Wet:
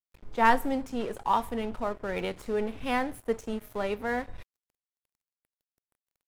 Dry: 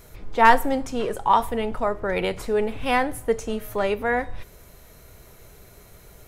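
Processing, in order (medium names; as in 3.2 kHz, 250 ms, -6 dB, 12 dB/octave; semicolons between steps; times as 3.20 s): dynamic bell 240 Hz, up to +5 dB, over -41 dBFS, Q 1.9; crossover distortion -38 dBFS; trim -7 dB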